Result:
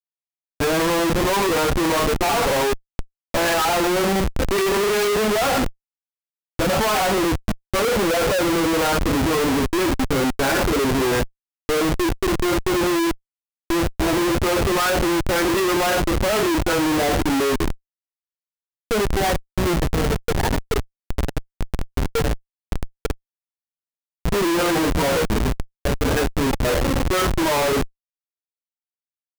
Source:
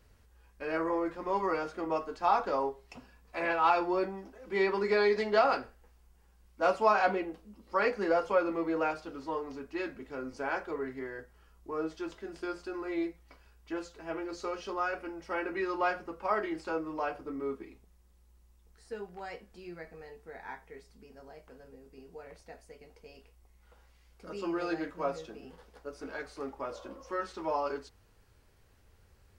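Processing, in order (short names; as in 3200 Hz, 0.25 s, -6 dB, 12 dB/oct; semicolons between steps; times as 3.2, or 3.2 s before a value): median-filter separation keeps harmonic; power-law curve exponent 0.5; Schmitt trigger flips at -30 dBFS; gain +8.5 dB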